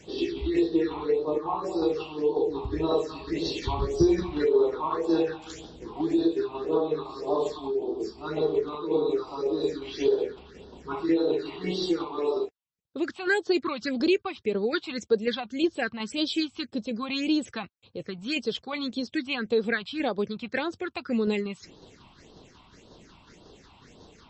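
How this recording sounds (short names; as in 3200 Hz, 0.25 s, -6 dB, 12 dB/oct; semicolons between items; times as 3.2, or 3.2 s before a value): phasing stages 6, 1.8 Hz, lowest notch 440–2200 Hz; tremolo saw down 5.5 Hz, depth 40%; MP3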